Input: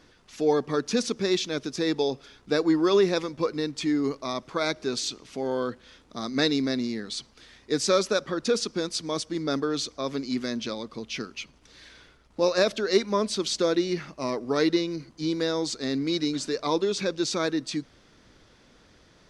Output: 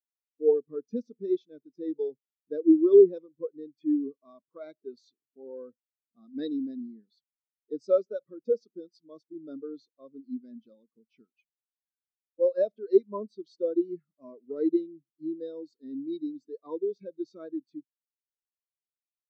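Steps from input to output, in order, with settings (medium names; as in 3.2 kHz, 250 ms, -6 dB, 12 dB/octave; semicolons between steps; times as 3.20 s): spectral contrast expander 2.5:1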